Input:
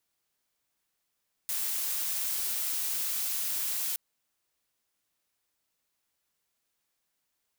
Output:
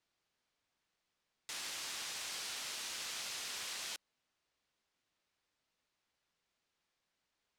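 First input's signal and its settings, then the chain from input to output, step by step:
noise blue, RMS -31.5 dBFS 2.47 s
low-pass 5 kHz 12 dB/octave

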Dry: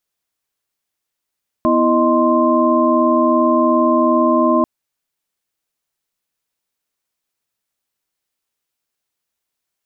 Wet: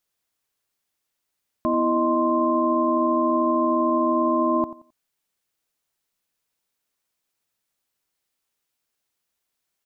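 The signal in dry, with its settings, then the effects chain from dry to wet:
chord B3/E4/D#5/C6 sine, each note -16.5 dBFS 2.99 s
peak limiter -14 dBFS; feedback delay 88 ms, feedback 26%, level -15 dB

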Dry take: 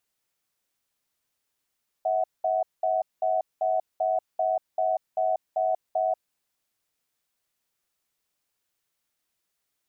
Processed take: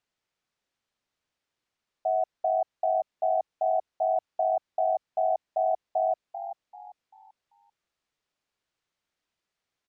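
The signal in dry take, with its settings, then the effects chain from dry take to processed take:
cadence 645 Hz, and 743 Hz, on 0.19 s, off 0.20 s, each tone -24.5 dBFS 4.15 s
distance through air 100 m; on a send: frequency-shifting echo 390 ms, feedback 34%, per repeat +42 Hz, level -11 dB

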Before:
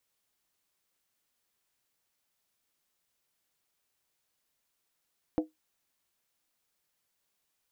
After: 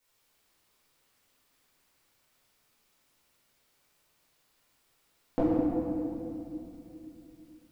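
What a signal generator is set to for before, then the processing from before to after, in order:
skin hit, lowest mode 312 Hz, decay 0.16 s, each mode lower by 6 dB, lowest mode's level -21 dB
simulated room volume 120 m³, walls hard, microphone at 1.5 m

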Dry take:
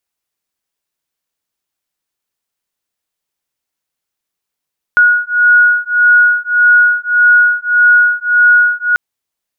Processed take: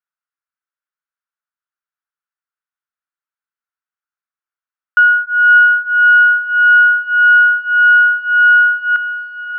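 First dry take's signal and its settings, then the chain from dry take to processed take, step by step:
beating tones 1.45 kHz, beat 1.7 Hz, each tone -9.5 dBFS 3.99 s
tracing distortion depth 0.083 ms; band-pass filter 1.4 kHz, Q 4.4; on a send: echo that smears into a reverb 606 ms, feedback 62%, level -13 dB

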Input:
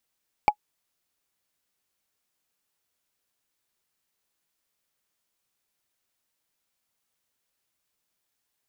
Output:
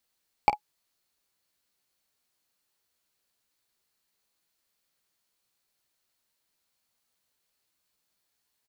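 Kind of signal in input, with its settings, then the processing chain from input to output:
wood hit, lowest mode 839 Hz, decay 0.07 s, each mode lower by 9 dB, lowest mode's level -8 dB
peaking EQ 4.3 kHz +6 dB 0.21 oct; on a send: early reflections 16 ms -8.5 dB, 49 ms -13.5 dB

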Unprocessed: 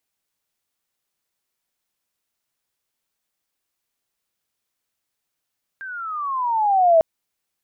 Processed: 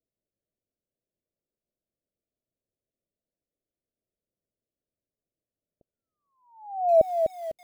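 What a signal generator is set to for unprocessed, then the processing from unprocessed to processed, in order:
gliding synth tone sine, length 1.20 s, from 1.6 kHz, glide -16 st, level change +21 dB, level -9.5 dB
steep low-pass 660 Hz 72 dB/octave; bit-crushed delay 250 ms, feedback 35%, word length 8-bit, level -6 dB

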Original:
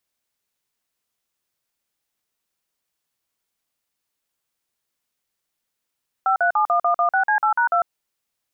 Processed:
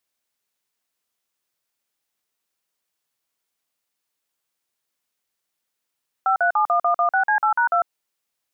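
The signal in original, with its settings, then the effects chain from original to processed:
DTMF "5371116C8#2", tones 100 ms, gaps 46 ms, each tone -18 dBFS
bass shelf 160 Hz -7.5 dB

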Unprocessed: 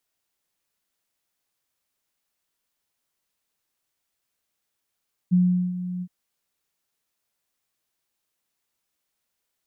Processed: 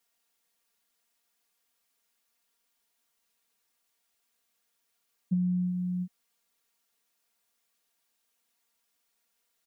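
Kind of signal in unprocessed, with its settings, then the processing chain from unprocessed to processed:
ADSR sine 180 Hz, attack 24 ms, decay 395 ms, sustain -13 dB, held 0.71 s, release 57 ms -14 dBFS
compression, threshold -25 dBFS; bass shelf 240 Hz -6.5 dB; comb 4.3 ms, depth 95%

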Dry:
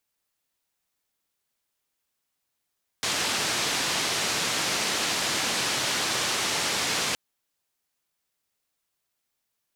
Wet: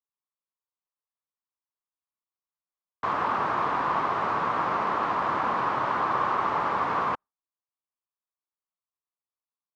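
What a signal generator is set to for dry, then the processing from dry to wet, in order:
noise band 120–6000 Hz, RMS -27 dBFS 4.12 s
gate with hold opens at -24 dBFS; resonant low-pass 1.1 kHz, resonance Q 4.3

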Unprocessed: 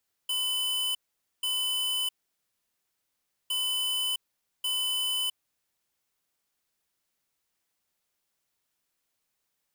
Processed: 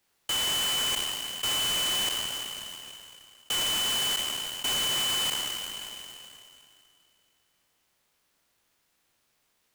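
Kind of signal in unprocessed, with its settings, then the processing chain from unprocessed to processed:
beep pattern square 3.01 kHz, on 0.66 s, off 0.48 s, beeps 2, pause 1.41 s, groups 2, -29 dBFS
spectral sustain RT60 2.55 s; in parallel at -2 dB: compression, threshold -41 dBFS; on the sum: delay time shaken by noise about 4.4 kHz, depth 0.03 ms

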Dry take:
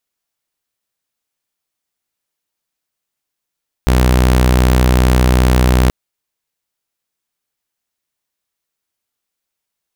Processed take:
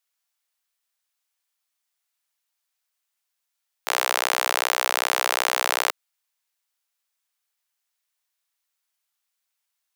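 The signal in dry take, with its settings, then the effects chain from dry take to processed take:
tone saw 62.6 Hz -6 dBFS 2.03 s
Bessel high-pass 920 Hz, order 6

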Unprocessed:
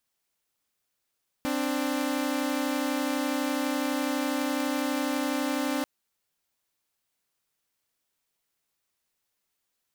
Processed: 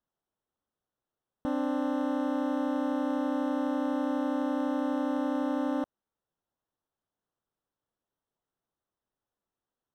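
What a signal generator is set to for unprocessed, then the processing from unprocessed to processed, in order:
chord C4/D4 saw, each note -26.5 dBFS 4.39 s
boxcar filter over 19 samples

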